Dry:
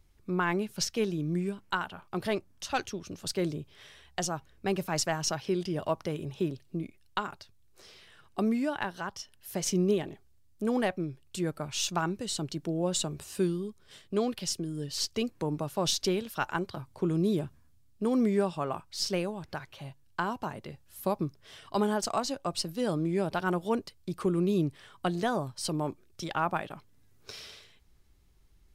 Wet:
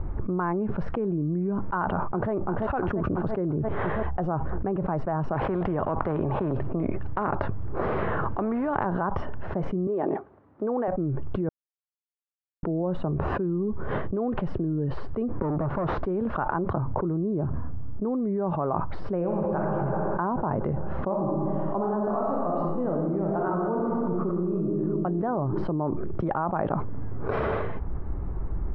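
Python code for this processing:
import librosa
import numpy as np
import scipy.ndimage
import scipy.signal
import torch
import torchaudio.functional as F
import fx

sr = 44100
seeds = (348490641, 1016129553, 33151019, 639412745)

y = fx.echo_throw(x, sr, start_s=1.8, length_s=0.52, ms=340, feedback_pct=65, wet_db=-13.0)
y = fx.spectral_comp(y, sr, ratio=2.0, at=(5.34, 8.86))
y = fx.highpass(y, sr, hz=350.0, slope=12, at=(9.87, 10.88))
y = fx.tube_stage(y, sr, drive_db=42.0, bias=0.35, at=(15.42, 16.06))
y = fx.reverb_throw(y, sr, start_s=19.17, length_s=0.44, rt60_s=2.3, drr_db=-0.5)
y = fx.reverb_throw(y, sr, start_s=21.02, length_s=3.64, rt60_s=1.6, drr_db=-2.5)
y = fx.edit(y, sr, fx.silence(start_s=11.49, length_s=1.14), tone=tone)
y = scipy.signal.sosfilt(scipy.signal.butter(4, 1200.0, 'lowpass', fs=sr, output='sos'), y)
y = fx.env_flatten(y, sr, amount_pct=100)
y = F.gain(torch.from_numpy(y), -6.0).numpy()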